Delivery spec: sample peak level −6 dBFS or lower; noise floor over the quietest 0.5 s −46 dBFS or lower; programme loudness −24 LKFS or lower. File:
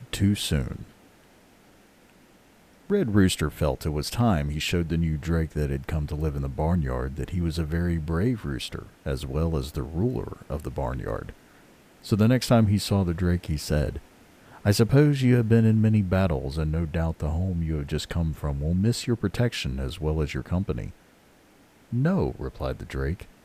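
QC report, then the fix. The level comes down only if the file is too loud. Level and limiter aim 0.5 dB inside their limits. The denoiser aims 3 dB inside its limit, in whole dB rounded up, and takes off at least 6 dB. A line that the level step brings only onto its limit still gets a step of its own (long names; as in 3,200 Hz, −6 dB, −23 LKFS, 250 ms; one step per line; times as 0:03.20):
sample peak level −6.5 dBFS: in spec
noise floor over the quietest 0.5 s −56 dBFS: in spec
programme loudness −26.0 LKFS: in spec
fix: no processing needed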